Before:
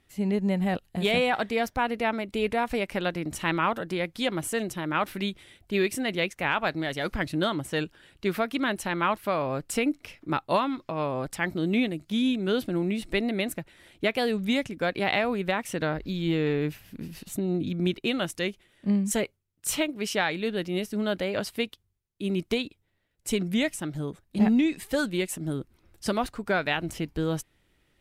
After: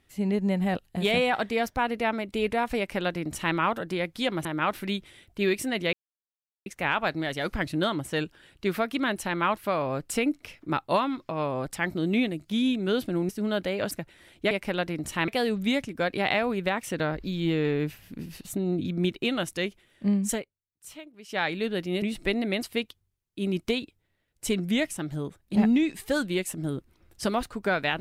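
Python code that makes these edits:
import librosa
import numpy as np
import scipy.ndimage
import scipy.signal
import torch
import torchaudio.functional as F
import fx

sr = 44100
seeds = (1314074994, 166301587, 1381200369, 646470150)

y = fx.edit(x, sr, fx.duplicate(start_s=2.78, length_s=0.77, to_s=14.1),
    fx.cut(start_s=4.45, length_s=0.33),
    fx.insert_silence(at_s=6.26, length_s=0.73),
    fx.swap(start_s=12.89, length_s=0.61, other_s=20.84, other_length_s=0.62),
    fx.fade_down_up(start_s=19.12, length_s=1.13, db=-17.0, fade_s=0.15), tone=tone)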